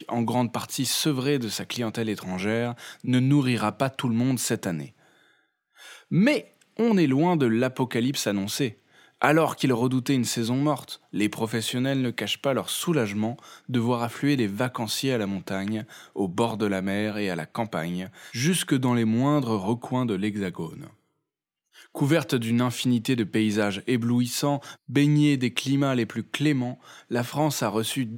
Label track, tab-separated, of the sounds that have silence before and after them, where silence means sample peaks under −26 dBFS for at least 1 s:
6.120000	20.650000	sound